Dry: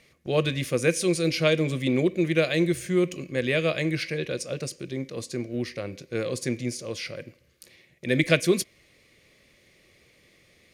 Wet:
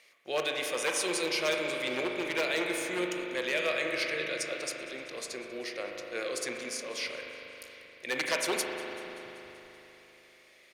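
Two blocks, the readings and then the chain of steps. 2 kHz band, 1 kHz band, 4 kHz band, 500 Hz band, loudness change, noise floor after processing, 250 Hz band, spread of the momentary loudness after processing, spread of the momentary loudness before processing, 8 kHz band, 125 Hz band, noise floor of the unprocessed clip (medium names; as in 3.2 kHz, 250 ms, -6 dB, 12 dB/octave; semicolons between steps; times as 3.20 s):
-1.5 dB, +1.0 dB, -1.5 dB, -7.0 dB, -6.0 dB, -59 dBFS, -12.5 dB, 15 LU, 11 LU, -1.0 dB, -24.5 dB, -61 dBFS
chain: one-sided wavefolder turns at -15.5 dBFS; high-pass 660 Hz 12 dB/octave; in parallel at +2.5 dB: peak limiter -20.5 dBFS, peak gain reduction 11 dB; on the sum: saturation -9 dBFS, distortion -27 dB; on a send: frequency-shifting echo 192 ms, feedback 64%, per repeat -58 Hz, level -20.5 dB; on the sum: spring tank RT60 3.7 s, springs 39 ms, chirp 75 ms, DRR 1.5 dB; trim -8 dB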